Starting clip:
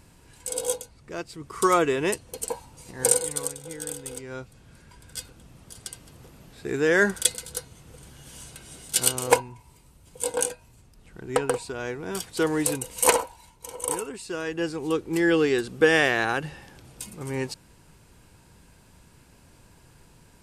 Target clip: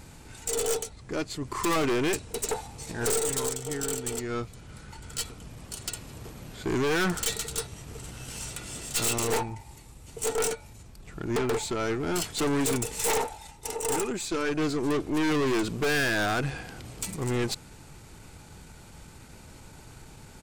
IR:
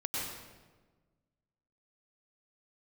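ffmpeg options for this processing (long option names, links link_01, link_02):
-af "asetrate=40440,aresample=44100,atempo=1.09051,aeval=exprs='(tanh(39.8*val(0)+0.4)-tanh(0.4))/39.8':channel_layout=same,volume=8dB"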